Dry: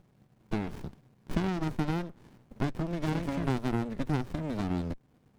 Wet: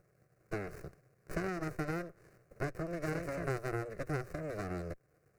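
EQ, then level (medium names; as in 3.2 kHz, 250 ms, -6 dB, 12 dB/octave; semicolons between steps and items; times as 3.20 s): bass shelf 93 Hz -12 dB; static phaser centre 900 Hz, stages 6; +1.0 dB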